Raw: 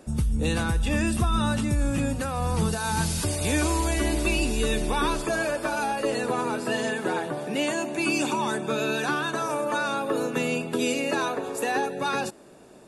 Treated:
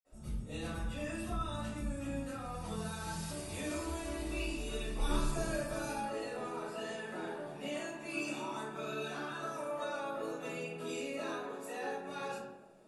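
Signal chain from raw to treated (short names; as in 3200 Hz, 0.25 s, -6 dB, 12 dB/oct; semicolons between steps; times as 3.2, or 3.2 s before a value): 4.94–5.94 tone controls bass +14 dB, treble +9 dB; reverb RT60 0.95 s, pre-delay 48 ms, DRR -60 dB; gain +5 dB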